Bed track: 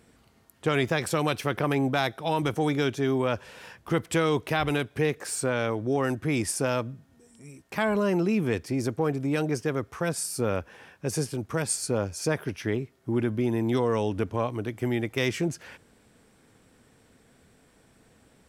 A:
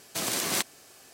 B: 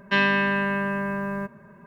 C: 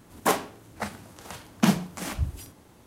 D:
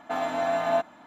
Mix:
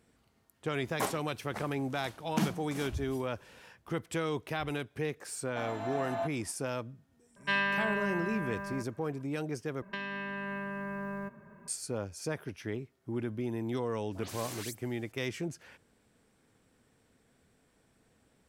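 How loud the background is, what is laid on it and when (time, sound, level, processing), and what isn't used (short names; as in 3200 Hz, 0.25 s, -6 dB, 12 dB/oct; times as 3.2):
bed track -9 dB
0.74 add C -10 dB
5.46 add D -10.5 dB
7.36 add B -7.5 dB + bell 290 Hz -10.5 dB 1.3 oct
9.82 replace with B -5.5 dB + compressor 12:1, threshold -28 dBFS
13.99 add A -14 dB + dispersion highs, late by 0.147 s, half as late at 2800 Hz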